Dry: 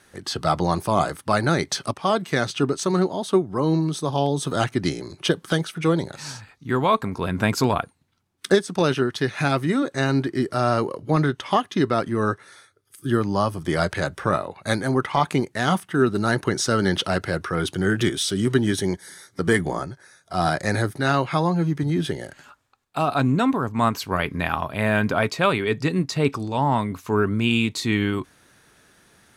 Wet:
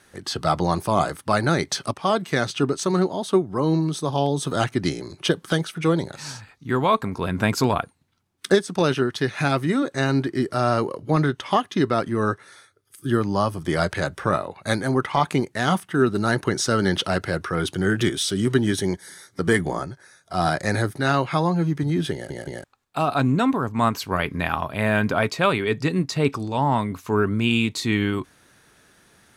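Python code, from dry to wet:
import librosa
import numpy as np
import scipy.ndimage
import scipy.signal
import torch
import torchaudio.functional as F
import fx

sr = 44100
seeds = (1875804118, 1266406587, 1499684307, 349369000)

y = fx.edit(x, sr, fx.stutter_over(start_s=22.13, slice_s=0.17, count=3), tone=tone)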